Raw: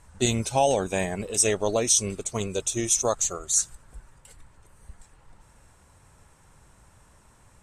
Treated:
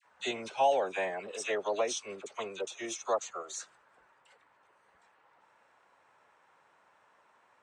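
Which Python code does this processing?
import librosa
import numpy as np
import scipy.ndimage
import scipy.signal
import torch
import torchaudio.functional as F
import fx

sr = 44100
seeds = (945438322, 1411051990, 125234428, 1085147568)

y = fx.bandpass_edges(x, sr, low_hz=570.0, high_hz=2700.0)
y = fx.dispersion(y, sr, late='lows', ms=56.0, hz=1200.0)
y = y * librosa.db_to_amplitude(-2.0)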